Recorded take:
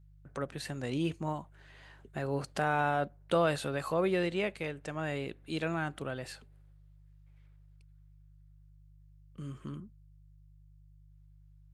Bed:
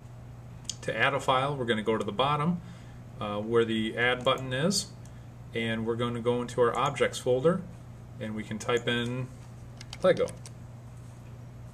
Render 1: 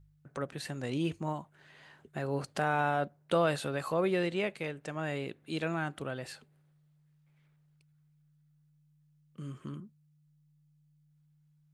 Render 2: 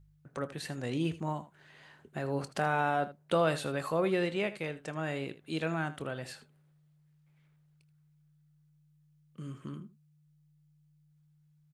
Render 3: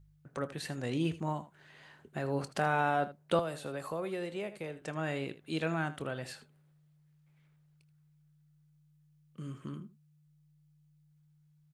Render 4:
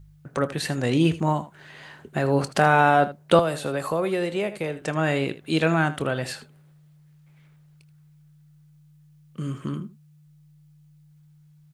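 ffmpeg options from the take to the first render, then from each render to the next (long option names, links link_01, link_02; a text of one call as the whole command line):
ffmpeg -i in.wav -af "bandreject=frequency=50:width_type=h:width=4,bandreject=frequency=100:width_type=h:width=4" out.wav
ffmpeg -i in.wav -af "aecho=1:1:25|79:0.15|0.168" out.wav
ffmpeg -i in.wav -filter_complex "[0:a]asettb=1/sr,asplit=3[link_01][link_02][link_03];[link_01]atrim=end=3.394[link_04];[link_02]atrim=start=3.39:end=4.82,asetpts=PTS-STARTPTS,afade=type=in:duration=0.004:curve=qsin,afade=type=out:start_time=1.426:duration=0.004:curve=qsin,acrossover=split=400|910|7100[link_05][link_06][link_07][link_08];[link_05]acompressor=threshold=-44dB:ratio=3[link_09];[link_06]acompressor=threshold=-40dB:ratio=3[link_10];[link_07]acompressor=threshold=-49dB:ratio=3[link_11];[link_08]acompressor=threshold=-55dB:ratio=3[link_12];[link_09][link_10][link_11][link_12]amix=inputs=4:normalize=0[link_13];[link_03]atrim=start=4.816[link_14];[link_04][link_13]acrossfade=duration=0.004:curve1=hsin:curve2=qsin[link_15];[link_15][link_14]acrossfade=duration=0.004:curve1=qsin:curve2=hsin" out.wav
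ffmpeg -i in.wav -af "volume=12dB" out.wav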